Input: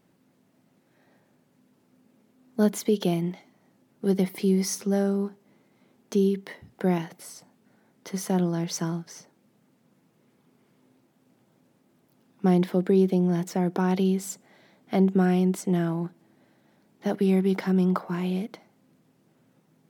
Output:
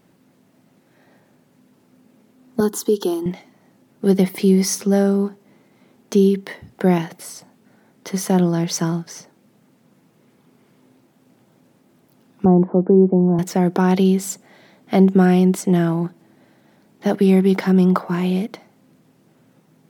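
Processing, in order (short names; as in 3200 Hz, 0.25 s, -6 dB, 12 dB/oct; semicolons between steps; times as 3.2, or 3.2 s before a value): 2.6–3.26 fixed phaser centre 610 Hz, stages 6; 12.45–13.39 Chebyshev band-pass 100–1000 Hz, order 3; gain +8 dB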